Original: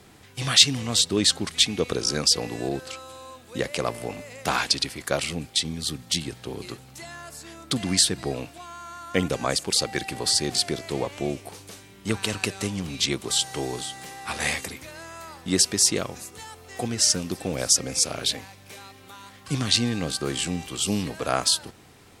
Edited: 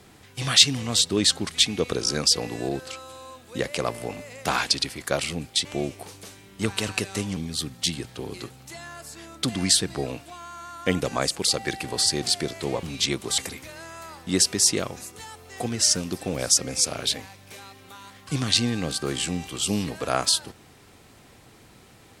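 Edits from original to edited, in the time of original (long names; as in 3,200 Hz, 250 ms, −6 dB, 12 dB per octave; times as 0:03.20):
0:11.11–0:12.83: move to 0:05.65
0:13.38–0:14.57: remove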